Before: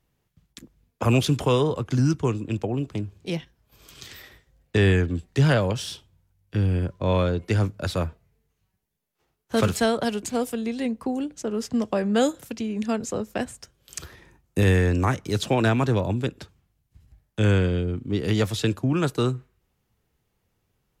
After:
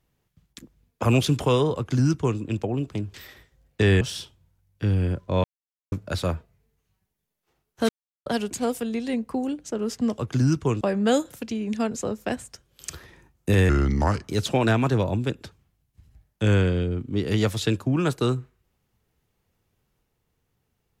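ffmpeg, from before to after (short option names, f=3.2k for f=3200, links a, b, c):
-filter_complex "[0:a]asplit=11[a][b][c][d][e][f][g][h][i][j][k];[a]atrim=end=3.142[l];[b]atrim=start=4.088:end=4.962[m];[c]atrim=start=5.728:end=7.16,asetpts=PTS-STARTPTS,afade=t=out:st=1.428:d=0.004:c=hsin[n];[d]atrim=start=7.16:end=7.64,asetpts=PTS-STARTPTS,volume=0[o];[e]atrim=start=7.64:end=9.61,asetpts=PTS-STARTPTS,afade=t=in:d=0.004:c=hsin,afade=t=out:st=1.966:d=0.004:c=hsin[p];[f]atrim=start=9.61:end=9.98,asetpts=PTS-STARTPTS,volume=0[q];[g]atrim=start=9.98:end=11.902,asetpts=PTS-STARTPTS,afade=t=in:d=0.004:c=hsin[r];[h]atrim=start=1.758:end=2.392[s];[i]atrim=start=11.898:end=14.784[t];[j]atrim=start=14.78:end=15.21,asetpts=PTS-STARTPTS,asetrate=34398,aresample=44100[u];[k]atrim=start=15.206[v];[l][m]acrossfade=d=0.004:c1=hsin:c2=hsin[w];[n][o][p][q][r]concat=n=5:v=0:a=1[x];[w][x]acrossfade=d=0.004:c1=hsin:c2=hsin[y];[y][s]acrossfade=d=0.004:c1=hsin:c2=hsin[z];[z][t]acrossfade=d=0.004:c1=hsin:c2=hsin[aa];[aa][u]acrossfade=d=0.004:c1=hsin:c2=hsin[ab];[ab][v]acrossfade=d=0.004:c1=hsin:c2=hsin"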